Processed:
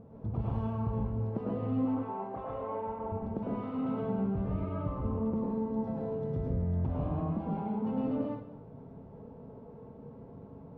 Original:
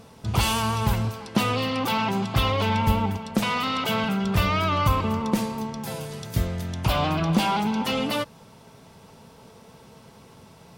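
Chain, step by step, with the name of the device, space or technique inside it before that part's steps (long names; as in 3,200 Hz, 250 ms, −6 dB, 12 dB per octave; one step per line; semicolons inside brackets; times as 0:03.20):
0:01.85–0:03.12: three-way crossover with the lows and the highs turned down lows −22 dB, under 410 Hz, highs −12 dB, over 2,300 Hz
television next door (downward compressor 4 to 1, threshold −31 dBFS, peak gain reduction 13.5 dB; low-pass filter 530 Hz 12 dB per octave; convolution reverb RT60 0.65 s, pre-delay 99 ms, DRR −4.5 dB)
level −2.5 dB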